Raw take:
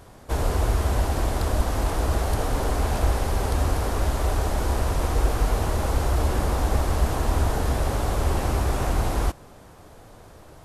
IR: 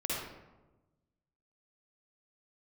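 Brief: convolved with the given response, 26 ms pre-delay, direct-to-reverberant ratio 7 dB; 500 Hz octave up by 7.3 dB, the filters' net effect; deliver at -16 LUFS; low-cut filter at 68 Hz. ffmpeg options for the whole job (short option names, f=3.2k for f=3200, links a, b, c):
-filter_complex "[0:a]highpass=68,equalizer=f=500:t=o:g=9,asplit=2[a][b];[1:a]atrim=start_sample=2205,adelay=26[c];[b][c]afir=irnorm=-1:irlink=0,volume=-12.5dB[d];[a][d]amix=inputs=2:normalize=0,volume=7dB"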